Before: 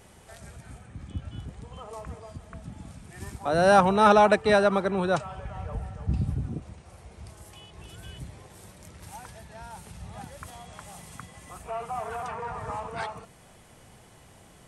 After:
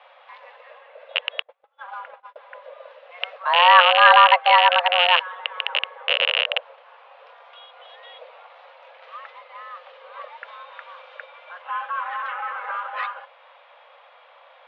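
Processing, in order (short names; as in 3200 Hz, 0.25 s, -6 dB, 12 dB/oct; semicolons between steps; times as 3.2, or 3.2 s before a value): rattling part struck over -30 dBFS, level -10 dBFS; mistuned SSB +350 Hz 190–3200 Hz; 1.42–2.36 gate -43 dBFS, range -29 dB; gain +5.5 dB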